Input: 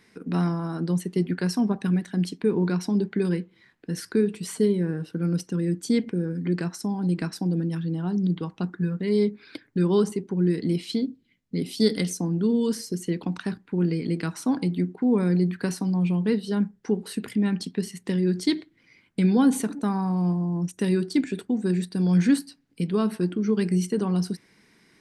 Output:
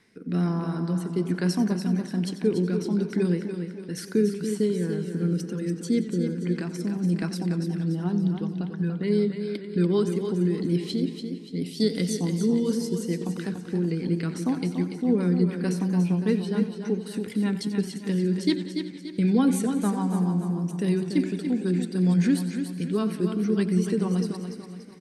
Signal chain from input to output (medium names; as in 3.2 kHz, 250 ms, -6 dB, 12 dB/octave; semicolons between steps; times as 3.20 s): rotary cabinet horn 1.2 Hz, later 6.7 Hz, at 9.20 s; feedback delay 289 ms, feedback 44%, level -7.5 dB; modulated delay 91 ms, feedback 73%, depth 109 cents, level -15 dB